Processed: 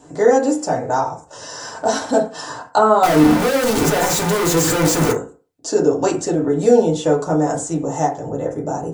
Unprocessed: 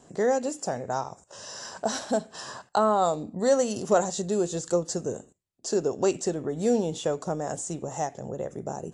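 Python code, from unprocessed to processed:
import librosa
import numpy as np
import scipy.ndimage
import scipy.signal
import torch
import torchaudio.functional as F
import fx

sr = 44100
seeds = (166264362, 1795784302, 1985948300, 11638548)

y = fx.clip_1bit(x, sr, at=(3.03, 5.12))
y = fx.rev_fdn(y, sr, rt60_s=0.36, lf_ratio=0.85, hf_ratio=0.35, size_ms=20.0, drr_db=-3.0)
y = y * librosa.db_to_amplitude(5.0)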